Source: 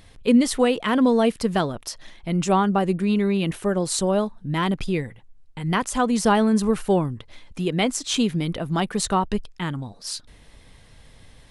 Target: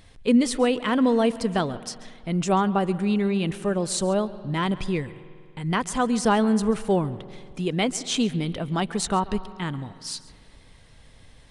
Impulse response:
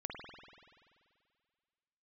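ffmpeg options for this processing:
-filter_complex "[0:a]asplit=2[a][b];[1:a]atrim=start_sample=2205,adelay=137[c];[b][c]afir=irnorm=-1:irlink=0,volume=-16dB[d];[a][d]amix=inputs=2:normalize=0,aresample=22050,aresample=44100,volume=-2dB"

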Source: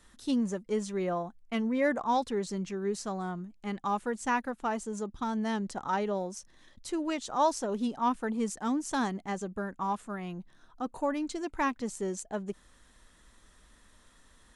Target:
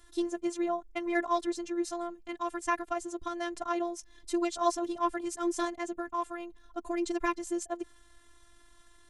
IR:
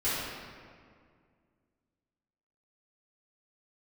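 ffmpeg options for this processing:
-af "atempo=1.6,afftfilt=real='hypot(re,im)*cos(PI*b)':imag='0':win_size=512:overlap=0.75,volume=4dB"

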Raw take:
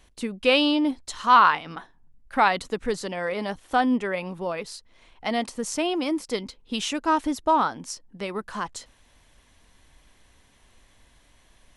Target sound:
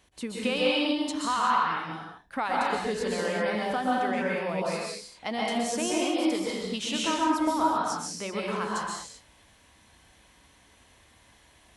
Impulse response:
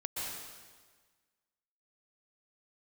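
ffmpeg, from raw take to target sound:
-filter_complex "[0:a]highpass=69,bandreject=f=100.2:t=h:w=4,bandreject=f=200.4:t=h:w=4,bandreject=f=300.6:t=h:w=4,bandreject=f=400.8:t=h:w=4,bandreject=f=501:t=h:w=4,bandreject=f=601.2:t=h:w=4,bandreject=f=701.4:t=h:w=4,bandreject=f=801.6:t=h:w=4,acompressor=threshold=-26dB:ratio=3[a];[1:a]atrim=start_sample=2205,afade=t=out:st=0.45:d=0.01,atrim=end_sample=20286[b];[a][b]afir=irnorm=-1:irlink=0"

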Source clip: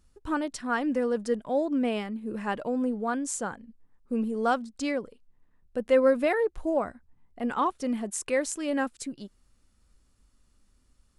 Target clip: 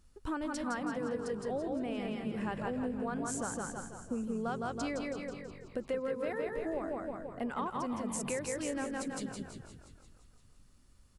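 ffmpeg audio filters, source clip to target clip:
-filter_complex "[0:a]asplit=2[a][b];[b]aecho=0:1:162|324|486|648|810:0.596|0.232|0.0906|0.0353|0.0138[c];[a][c]amix=inputs=2:normalize=0,acompressor=threshold=-34dB:ratio=6,asplit=2[d][e];[e]asplit=8[f][g][h][i][j][k][l][m];[f]adelay=173,afreqshift=-48,volume=-10.5dB[n];[g]adelay=346,afreqshift=-96,volume=-14.4dB[o];[h]adelay=519,afreqshift=-144,volume=-18.3dB[p];[i]adelay=692,afreqshift=-192,volume=-22.1dB[q];[j]adelay=865,afreqshift=-240,volume=-26dB[r];[k]adelay=1038,afreqshift=-288,volume=-29.9dB[s];[l]adelay=1211,afreqshift=-336,volume=-33.8dB[t];[m]adelay=1384,afreqshift=-384,volume=-37.6dB[u];[n][o][p][q][r][s][t][u]amix=inputs=8:normalize=0[v];[d][v]amix=inputs=2:normalize=0"

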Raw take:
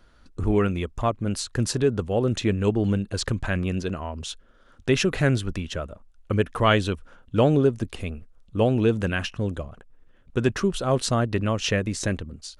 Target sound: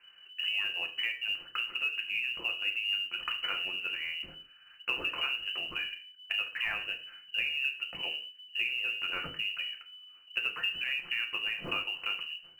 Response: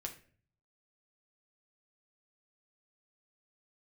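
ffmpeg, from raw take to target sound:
-filter_complex "[0:a]lowpass=f=2.6k:t=q:w=0.5098,lowpass=f=2.6k:t=q:w=0.6013,lowpass=f=2.6k:t=q:w=0.9,lowpass=f=2.6k:t=q:w=2.563,afreqshift=-3000,acompressor=threshold=-27dB:ratio=6[a];[1:a]atrim=start_sample=2205,afade=t=out:st=0.26:d=0.01,atrim=end_sample=11907[b];[a][b]afir=irnorm=-1:irlink=0,acrusher=bits=8:mode=log:mix=0:aa=0.000001"

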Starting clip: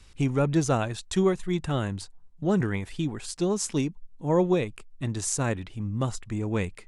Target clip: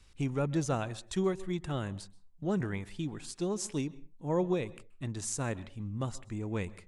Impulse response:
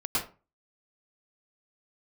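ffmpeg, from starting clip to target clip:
-filter_complex "[0:a]asplit=2[a][b];[1:a]atrim=start_sample=2205,afade=t=out:st=0.27:d=0.01,atrim=end_sample=12348,asetrate=36162,aresample=44100[c];[b][c]afir=irnorm=-1:irlink=0,volume=-29.5dB[d];[a][d]amix=inputs=2:normalize=0,volume=-7.5dB"

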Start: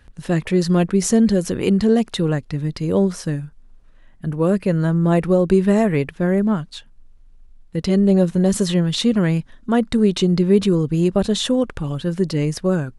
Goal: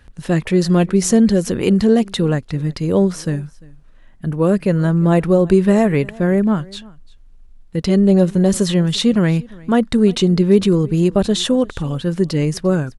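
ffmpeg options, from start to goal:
-af "aecho=1:1:347:0.0668,volume=2.5dB"

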